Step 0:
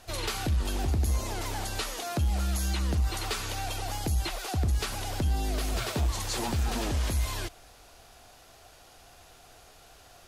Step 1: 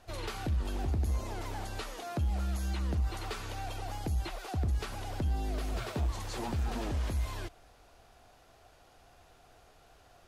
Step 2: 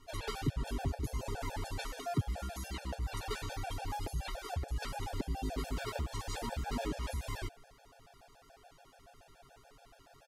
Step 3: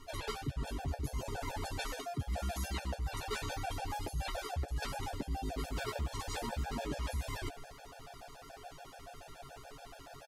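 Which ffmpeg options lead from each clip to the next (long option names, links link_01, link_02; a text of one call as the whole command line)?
ffmpeg -i in.wav -af "highshelf=frequency=2900:gain=-9.5,volume=-4dB" out.wav
ffmpeg -i in.wav -af "aecho=1:1:7.3:0.63,afftfilt=real='re*gt(sin(2*PI*7*pts/sr)*(1-2*mod(floor(b*sr/1024/460),2)),0)':imag='im*gt(sin(2*PI*7*pts/sr)*(1-2*mod(floor(b*sr/1024/460),2)),0)':win_size=1024:overlap=0.75,volume=1.5dB" out.wav
ffmpeg -i in.wav -filter_complex "[0:a]areverse,acompressor=threshold=-44dB:ratio=5,areverse,asplit=2[link_01][link_02];[link_02]adelay=14,volume=-10dB[link_03];[link_01][link_03]amix=inputs=2:normalize=0,volume=8.5dB" out.wav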